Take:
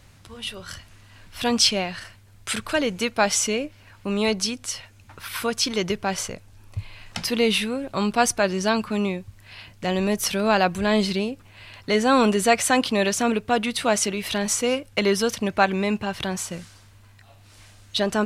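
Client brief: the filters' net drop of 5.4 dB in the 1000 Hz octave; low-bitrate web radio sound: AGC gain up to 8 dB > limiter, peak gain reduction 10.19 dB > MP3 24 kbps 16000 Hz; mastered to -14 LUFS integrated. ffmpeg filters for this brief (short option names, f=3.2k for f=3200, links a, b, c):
-af "equalizer=f=1k:t=o:g=-8,dynaudnorm=m=8dB,alimiter=limit=-15.5dB:level=0:latency=1,volume=13.5dB" -ar 16000 -c:a libmp3lame -b:a 24k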